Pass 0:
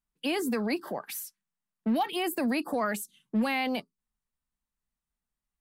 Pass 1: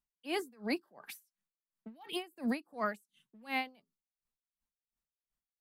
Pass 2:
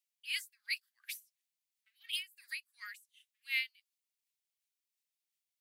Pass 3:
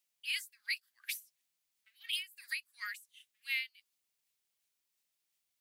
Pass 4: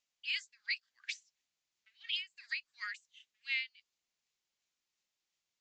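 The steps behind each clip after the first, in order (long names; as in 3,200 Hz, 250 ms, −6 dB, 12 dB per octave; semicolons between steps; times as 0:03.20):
tremolo with a sine in dB 2.8 Hz, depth 31 dB; level −2.5 dB
Butterworth high-pass 2,000 Hz 36 dB per octave; level +5 dB
downward compressor 3 to 1, threshold −40 dBFS, peak gain reduction 9 dB; level +6 dB
downsampling to 16,000 Hz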